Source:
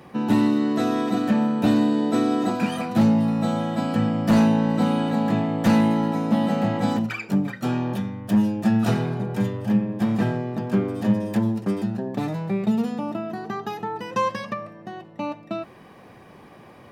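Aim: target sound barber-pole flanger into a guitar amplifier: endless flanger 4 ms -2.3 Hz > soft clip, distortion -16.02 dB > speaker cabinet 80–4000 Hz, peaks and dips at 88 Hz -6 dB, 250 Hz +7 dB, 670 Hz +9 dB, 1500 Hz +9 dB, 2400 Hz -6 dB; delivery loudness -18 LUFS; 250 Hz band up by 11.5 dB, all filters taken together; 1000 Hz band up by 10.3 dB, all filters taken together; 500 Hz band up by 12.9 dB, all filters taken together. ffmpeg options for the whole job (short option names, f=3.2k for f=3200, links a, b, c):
-filter_complex "[0:a]equalizer=f=250:t=o:g=7.5,equalizer=f=500:t=o:g=8,equalizer=f=1k:t=o:g=5,asplit=2[a][b];[b]adelay=4,afreqshift=-2.3[c];[a][c]amix=inputs=2:normalize=1,asoftclip=threshold=-10.5dB,highpass=80,equalizer=f=88:t=q:w=4:g=-6,equalizer=f=250:t=q:w=4:g=7,equalizer=f=670:t=q:w=4:g=9,equalizer=f=1.5k:t=q:w=4:g=9,equalizer=f=2.4k:t=q:w=4:g=-6,lowpass=f=4k:w=0.5412,lowpass=f=4k:w=1.3066,volume=-1dB"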